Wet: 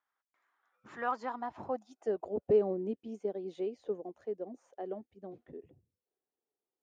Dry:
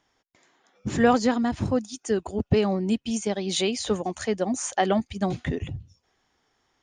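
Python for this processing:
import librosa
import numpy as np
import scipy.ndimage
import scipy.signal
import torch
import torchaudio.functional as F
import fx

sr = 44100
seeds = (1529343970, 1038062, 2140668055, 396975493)

y = fx.doppler_pass(x, sr, speed_mps=6, closest_m=4.5, pass_at_s=2.19)
y = fx.filter_sweep_bandpass(y, sr, from_hz=1300.0, to_hz=430.0, start_s=0.87, end_s=2.69, q=2.6)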